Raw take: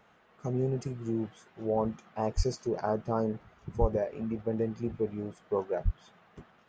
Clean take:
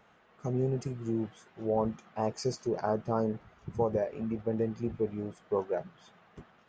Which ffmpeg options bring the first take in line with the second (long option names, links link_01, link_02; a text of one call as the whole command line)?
ffmpeg -i in.wav -filter_complex "[0:a]asplit=3[link_01][link_02][link_03];[link_01]afade=type=out:start_time=2.36:duration=0.02[link_04];[link_02]highpass=frequency=140:width=0.5412,highpass=frequency=140:width=1.3066,afade=type=in:start_time=2.36:duration=0.02,afade=type=out:start_time=2.48:duration=0.02[link_05];[link_03]afade=type=in:start_time=2.48:duration=0.02[link_06];[link_04][link_05][link_06]amix=inputs=3:normalize=0,asplit=3[link_07][link_08][link_09];[link_07]afade=type=out:start_time=3.8:duration=0.02[link_10];[link_08]highpass=frequency=140:width=0.5412,highpass=frequency=140:width=1.3066,afade=type=in:start_time=3.8:duration=0.02,afade=type=out:start_time=3.92:duration=0.02[link_11];[link_09]afade=type=in:start_time=3.92:duration=0.02[link_12];[link_10][link_11][link_12]amix=inputs=3:normalize=0,asplit=3[link_13][link_14][link_15];[link_13]afade=type=out:start_time=5.84:duration=0.02[link_16];[link_14]highpass=frequency=140:width=0.5412,highpass=frequency=140:width=1.3066,afade=type=in:start_time=5.84:duration=0.02,afade=type=out:start_time=5.96:duration=0.02[link_17];[link_15]afade=type=in:start_time=5.96:duration=0.02[link_18];[link_16][link_17][link_18]amix=inputs=3:normalize=0" out.wav